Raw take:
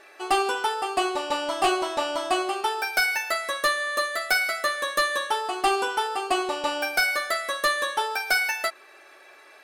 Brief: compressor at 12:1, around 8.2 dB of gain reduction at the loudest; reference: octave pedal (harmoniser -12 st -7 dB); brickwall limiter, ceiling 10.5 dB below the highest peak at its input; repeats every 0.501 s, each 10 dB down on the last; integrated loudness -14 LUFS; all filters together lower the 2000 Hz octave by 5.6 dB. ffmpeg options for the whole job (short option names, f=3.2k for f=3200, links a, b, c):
-filter_complex "[0:a]equalizer=f=2k:t=o:g=-7.5,acompressor=threshold=-28dB:ratio=12,alimiter=level_in=3dB:limit=-24dB:level=0:latency=1,volume=-3dB,aecho=1:1:501|1002|1503|2004:0.316|0.101|0.0324|0.0104,asplit=2[a][b];[b]asetrate=22050,aresample=44100,atempo=2,volume=-7dB[c];[a][c]amix=inputs=2:normalize=0,volume=20dB"